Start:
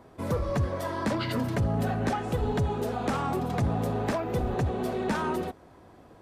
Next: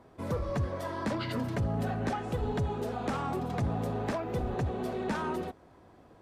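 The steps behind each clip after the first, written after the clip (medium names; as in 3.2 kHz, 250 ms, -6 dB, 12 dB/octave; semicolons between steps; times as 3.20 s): treble shelf 9.9 kHz -6 dB; trim -4 dB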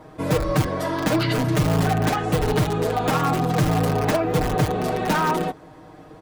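in parallel at -6 dB: integer overflow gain 25.5 dB; on the sum: comb 6.5 ms, depth 85%; trim +7 dB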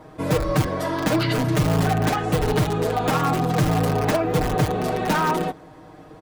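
echo from a far wall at 19 m, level -29 dB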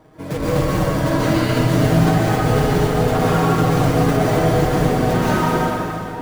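in parallel at -9.5 dB: sample-rate reducer 1.3 kHz; on the sum: plate-style reverb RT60 3.5 s, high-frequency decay 0.7×, pre-delay 110 ms, DRR -9.5 dB; trim -7 dB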